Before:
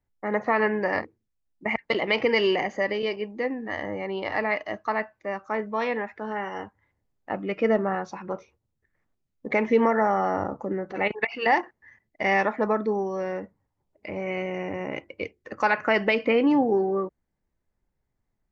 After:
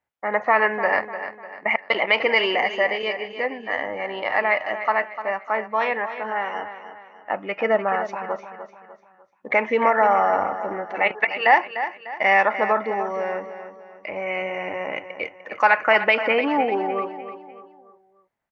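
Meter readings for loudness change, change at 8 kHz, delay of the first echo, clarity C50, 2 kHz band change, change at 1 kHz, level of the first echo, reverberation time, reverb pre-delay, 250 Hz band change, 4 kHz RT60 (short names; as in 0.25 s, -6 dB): +4.0 dB, n/a, 0.299 s, none, +7.0 dB, +6.5 dB, -11.0 dB, none, none, -5.0 dB, none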